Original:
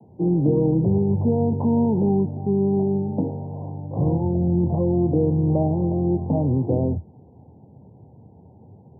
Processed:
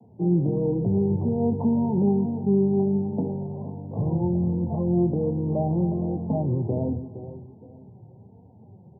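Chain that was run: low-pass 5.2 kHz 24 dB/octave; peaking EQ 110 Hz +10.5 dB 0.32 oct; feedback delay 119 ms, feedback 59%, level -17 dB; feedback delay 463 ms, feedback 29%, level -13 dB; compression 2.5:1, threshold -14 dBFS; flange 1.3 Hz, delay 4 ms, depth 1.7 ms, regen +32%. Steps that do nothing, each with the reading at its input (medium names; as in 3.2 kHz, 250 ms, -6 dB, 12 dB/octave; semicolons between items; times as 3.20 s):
low-pass 5.2 kHz: input has nothing above 910 Hz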